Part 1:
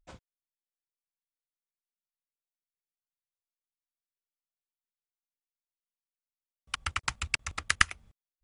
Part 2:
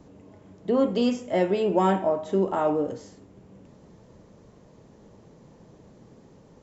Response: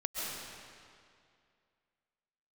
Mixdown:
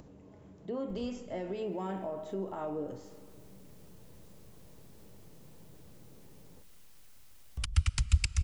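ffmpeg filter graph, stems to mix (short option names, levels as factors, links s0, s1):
-filter_complex "[0:a]acompressor=mode=upward:threshold=0.00891:ratio=2.5,lowshelf=f=130:g=11,acrossover=split=270|3000[s0][s1][s2];[s1]acompressor=threshold=0.00178:ratio=2[s3];[s0][s3][s2]amix=inputs=3:normalize=0,adelay=900,volume=0.891,asplit=2[s4][s5];[s5]volume=0.1[s6];[1:a]equalizer=f=230:t=o:w=0.31:g=-3.5,bandreject=f=50:t=h:w=6,bandreject=f=100:t=h:w=6,alimiter=limit=0.0944:level=0:latency=1:release=88,volume=0.299,asplit=3[s7][s8][s9];[s8]volume=0.133[s10];[s9]apad=whole_len=411821[s11];[s4][s11]sidechaincompress=threshold=0.00224:ratio=8:attack=16:release=206[s12];[2:a]atrim=start_sample=2205[s13];[s6][s10]amix=inputs=2:normalize=0[s14];[s14][s13]afir=irnorm=-1:irlink=0[s15];[s12][s7][s15]amix=inputs=3:normalize=0,lowshelf=f=150:g=8.5,acompressor=mode=upward:threshold=0.00398:ratio=2.5"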